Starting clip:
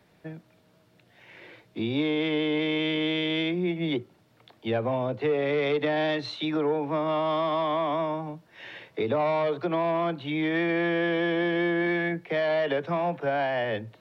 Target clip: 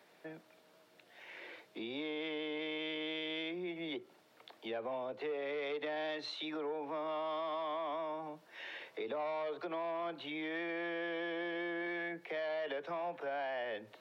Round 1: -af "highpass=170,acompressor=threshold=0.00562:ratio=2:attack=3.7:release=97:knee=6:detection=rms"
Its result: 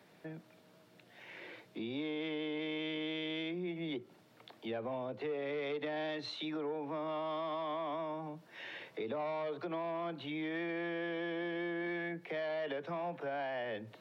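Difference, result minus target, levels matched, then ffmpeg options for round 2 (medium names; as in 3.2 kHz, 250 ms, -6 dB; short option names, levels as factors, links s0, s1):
125 Hz band +9.5 dB
-af "highpass=380,acompressor=threshold=0.00562:ratio=2:attack=3.7:release=97:knee=6:detection=rms"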